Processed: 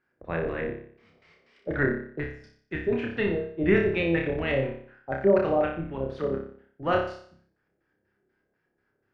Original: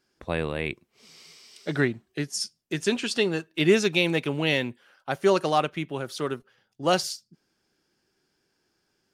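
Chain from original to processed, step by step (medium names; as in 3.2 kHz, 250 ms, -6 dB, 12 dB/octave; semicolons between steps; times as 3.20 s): octave divider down 1 oct, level -3 dB; LFO low-pass square 4.1 Hz 580–1800 Hz; flutter echo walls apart 5.1 m, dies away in 0.55 s; trim -6 dB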